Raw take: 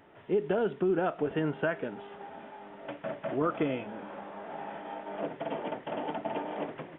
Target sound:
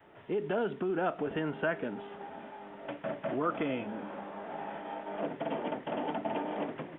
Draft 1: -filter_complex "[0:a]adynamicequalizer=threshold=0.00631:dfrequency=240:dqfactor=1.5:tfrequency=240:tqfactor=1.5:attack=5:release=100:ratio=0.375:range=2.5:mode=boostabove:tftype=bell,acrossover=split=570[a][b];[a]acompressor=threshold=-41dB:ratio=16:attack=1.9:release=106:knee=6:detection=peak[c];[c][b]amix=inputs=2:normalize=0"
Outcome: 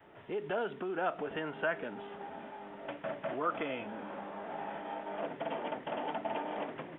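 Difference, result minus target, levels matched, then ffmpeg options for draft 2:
compressor: peak gain reduction +10 dB
-filter_complex "[0:a]adynamicequalizer=threshold=0.00631:dfrequency=240:dqfactor=1.5:tfrequency=240:tqfactor=1.5:attack=5:release=100:ratio=0.375:range=2.5:mode=boostabove:tftype=bell,acrossover=split=570[a][b];[a]acompressor=threshold=-30.5dB:ratio=16:attack=1.9:release=106:knee=6:detection=peak[c];[c][b]amix=inputs=2:normalize=0"

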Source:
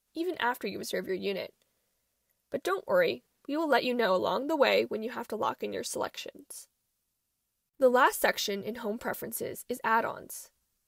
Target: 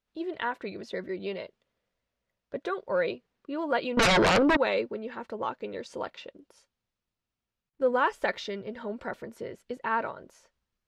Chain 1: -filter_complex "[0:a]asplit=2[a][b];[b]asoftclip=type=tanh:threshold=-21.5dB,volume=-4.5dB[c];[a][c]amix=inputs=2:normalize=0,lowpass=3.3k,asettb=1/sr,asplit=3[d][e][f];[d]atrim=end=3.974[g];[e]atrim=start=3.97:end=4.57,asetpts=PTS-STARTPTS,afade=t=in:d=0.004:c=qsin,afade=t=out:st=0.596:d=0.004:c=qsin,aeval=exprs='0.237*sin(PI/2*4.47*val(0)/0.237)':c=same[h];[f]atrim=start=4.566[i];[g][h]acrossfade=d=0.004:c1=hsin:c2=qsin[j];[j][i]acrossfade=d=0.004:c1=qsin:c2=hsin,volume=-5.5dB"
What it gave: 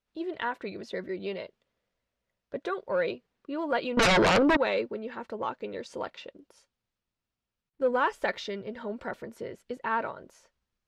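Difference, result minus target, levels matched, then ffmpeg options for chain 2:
soft clip: distortion +9 dB
-filter_complex "[0:a]asplit=2[a][b];[b]asoftclip=type=tanh:threshold=-14.5dB,volume=-4.5dB[c];[a][c]amix=inputs=2:normalize=0,lowpass=3.3k,asettb=1/sr,asplit=3[d][e][f];[d]atrim=end=3.974[g];[e]atrim=start=3.97:end=4.57,asetpts=PTS-STARTPTS,afade=t=in:d=0.004:c=qsin,afade=t=out:st=0.596:d=0.004:c=qsin,aeval=exprs='0.237*sin(PI/2*4.47*val(0)/0.237)':c=same[h];[f]atrim=start=4.566[i];[g][h]acrossfade=d=0.004:c1=hsin:c2=qsin[j];[j][i]acrossfade=d=0.004:c1=qsin:c2=hsin,volume=-5.5dB"

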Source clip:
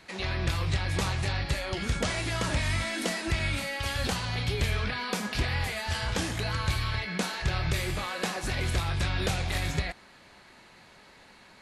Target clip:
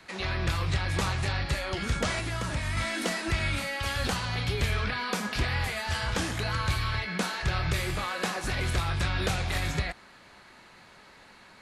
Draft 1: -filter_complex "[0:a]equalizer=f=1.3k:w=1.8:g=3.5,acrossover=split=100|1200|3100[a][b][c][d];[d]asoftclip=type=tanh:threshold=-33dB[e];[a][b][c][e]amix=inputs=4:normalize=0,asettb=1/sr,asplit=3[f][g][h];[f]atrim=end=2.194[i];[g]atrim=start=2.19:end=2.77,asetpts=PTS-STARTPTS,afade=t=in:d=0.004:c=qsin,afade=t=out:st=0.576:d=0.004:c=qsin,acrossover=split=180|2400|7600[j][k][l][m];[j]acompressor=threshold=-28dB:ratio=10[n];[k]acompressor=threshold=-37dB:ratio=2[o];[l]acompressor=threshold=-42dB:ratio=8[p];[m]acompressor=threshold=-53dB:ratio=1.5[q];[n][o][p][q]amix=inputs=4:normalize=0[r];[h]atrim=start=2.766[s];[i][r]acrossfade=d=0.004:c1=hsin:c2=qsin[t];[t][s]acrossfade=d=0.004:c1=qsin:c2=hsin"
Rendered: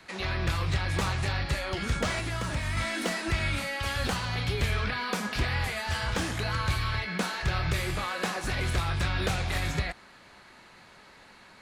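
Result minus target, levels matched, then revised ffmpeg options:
soft clip: distortion +11 dB
-filter_complex "[0:a]equalizer=f=1.3k:w=1.8:g=3.5,acrossover=split=100|1200|3100[a][b][c][d];[d]asoftclip=type=tanh:threshold=-24.5dB[e];[a][b][c][e]amix=inputs=4:normalize=0,asettb=1/sr,asplit=3[f][g][h];[f]atrim=end=2.194[i];[g]atrim=start=2.19:end=2.77,asetpts=PTS-STARTPTS,afade=t=in:d=0.004:c=qsin,afade=t=out:st=0.576:d=0.004:c=qsin,acrossover=split=180|2400|7600[j][k][l][m];[j]acompressor=threshold=-28dB:ratio=10[n];[k]acompressor=threshold=-37dB:ratio=2[o];[l]acompressor=threshold=-42dB:ratio=8[p];[m]acompressor=threshold=-53dB:ratio=1.5[q];[n][o][p][q]amix=inputs=4:normalize=0[r];[h]atrim=start=2.766[s];[i][r]acrossfade=d=0.004:c1=hsin:c2=qsin[t];[t][s]acrossfade=d=0.004:c1=qsin:c2=hsin"

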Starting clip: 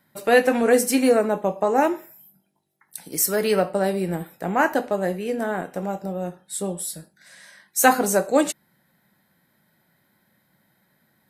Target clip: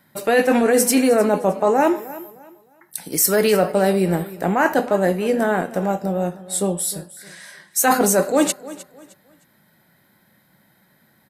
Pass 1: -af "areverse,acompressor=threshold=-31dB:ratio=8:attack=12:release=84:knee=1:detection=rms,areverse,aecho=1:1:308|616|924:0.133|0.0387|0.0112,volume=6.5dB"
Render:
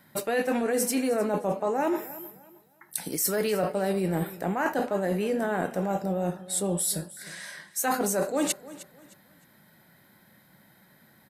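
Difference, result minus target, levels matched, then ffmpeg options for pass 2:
compressor: peak gain reduction +10.5 dB
-af "areverse,acompressor=threshold=-19dB:ratio=8:attack=12:release=84:knee=1:detection=rms,areverse,aecho=1:1:308|616|924:0.133|0.0387|0.0112,volume=6.5dB"

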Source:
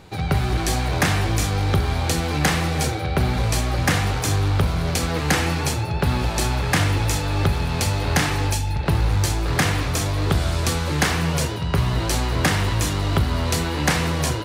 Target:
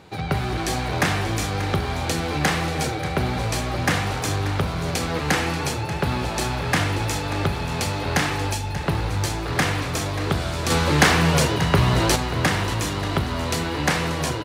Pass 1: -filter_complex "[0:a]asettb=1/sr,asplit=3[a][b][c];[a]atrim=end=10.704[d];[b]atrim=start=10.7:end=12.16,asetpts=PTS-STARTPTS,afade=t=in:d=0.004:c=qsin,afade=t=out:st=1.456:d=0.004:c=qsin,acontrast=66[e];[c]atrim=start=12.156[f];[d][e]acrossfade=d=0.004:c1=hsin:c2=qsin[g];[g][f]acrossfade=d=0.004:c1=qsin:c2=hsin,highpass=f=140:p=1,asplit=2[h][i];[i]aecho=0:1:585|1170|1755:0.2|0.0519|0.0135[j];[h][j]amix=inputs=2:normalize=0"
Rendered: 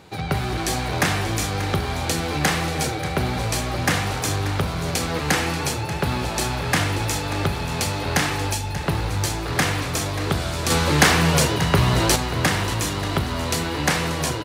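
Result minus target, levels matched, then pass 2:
8000 Hz band +3.0 dB
-filter_complex "[0:a]asettb=1/sr,asplit=3[a][b][c];[a]atrim=end=10.704[d];[b]atrim=start=10.7:end=12.16,asetpts=PTS-STARTPTS,afade=t=in:d=0.004:c=qsin,afade=t=out:st=1.456:d=0.004:c=qsin,acontrast=66[e];[c]atrim=start=12.156[f];[d][e]acrossfade=d=0.004:c1=hsin:c2=qsin[g];[g][f]acrossfade=d=0.004:c1=qsin:c2=hsin,highpass=f=140:p=1,highshelf=f=5.7k:g=-5.5,asplit=2[h][i];[i]aecho=0:1:585|1170|1755:0.2|0.0519|0.0135[j];[h][j]amix=inputs=2:normalize=0"

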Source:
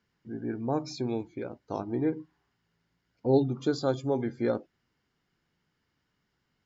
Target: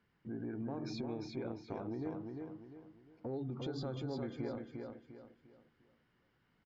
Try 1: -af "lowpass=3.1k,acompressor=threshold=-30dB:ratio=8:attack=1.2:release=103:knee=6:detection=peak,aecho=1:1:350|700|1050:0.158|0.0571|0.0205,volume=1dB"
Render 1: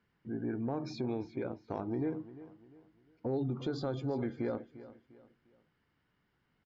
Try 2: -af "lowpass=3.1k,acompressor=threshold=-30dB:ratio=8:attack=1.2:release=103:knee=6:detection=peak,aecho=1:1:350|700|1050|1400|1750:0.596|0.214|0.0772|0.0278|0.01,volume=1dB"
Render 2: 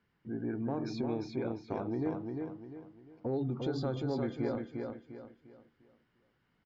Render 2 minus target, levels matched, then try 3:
compressor: peak gain reduction -7 dB
-af "lowpass=3.1k,acompressor=threshold=-38dB:ratio=8:attack=1.2:release=103:knee=6:detection=peak,aecho=1:1:350|700|1050|1400|1750:0.596|0.214|0.0772|0.0278|0.01,volume=1dB"

